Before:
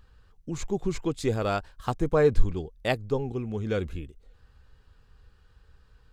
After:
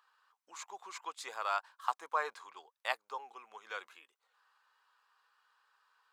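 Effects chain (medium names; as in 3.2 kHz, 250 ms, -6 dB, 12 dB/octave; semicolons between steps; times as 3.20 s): ladder high-pass 880 Hz, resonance 55%; trim +3.5 dB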